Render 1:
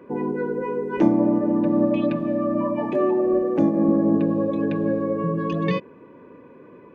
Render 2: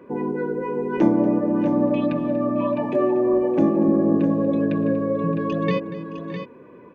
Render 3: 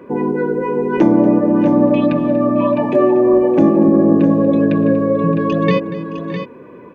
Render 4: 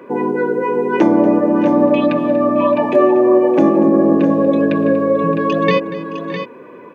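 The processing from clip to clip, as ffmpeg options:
ffmpeg -i in.wav -af "aecho=1:1:238|617|657:0.15|0.133|0.376" out.wav
ffmpeg -i in.wav -af "alimiter=level_in=8.5dB:limit=-1dB:release=50:level=0:latency=1,volume=-1dB" out.wav
ffmpeg -i in.wav -af "highpass=frequency=430:poles=1,volume=4dB" out.wav

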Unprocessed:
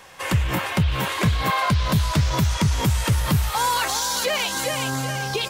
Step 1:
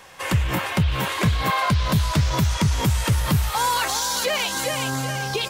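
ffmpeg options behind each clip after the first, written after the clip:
ffmpeg -i in.wav -af anull out.wav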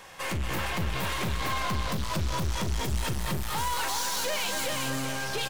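ffmpeg -i in.wav -af "aeval=exprs='(tanh(28.2*val(0)+0.5)-tanh(0.5))/28.2':channel_layout=same,aecho=1:1:40.82|236.2:0.251|0.447" out.wav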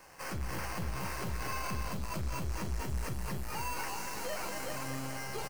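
ffmpeg -i in.wav -filter_complex "[0:a]acrossover=split=180|4600[link_01][link_02][link_03];[link_02]acrusher=samples=12:mix=1:aa=0.000001[link_04];[link_03]asoftclip=type=tanh:threshold=-37.5dB[link_05];[link_01][link_04][link_05]amix=inputs=3:normalize=0,asplit=2[link_06][link_07];[link_07]adelay=16,volume=-11.5dB[link_08];[link_06][link_08]amix=inputs=2:normalize=0,volume=-7.5dB" out.wav

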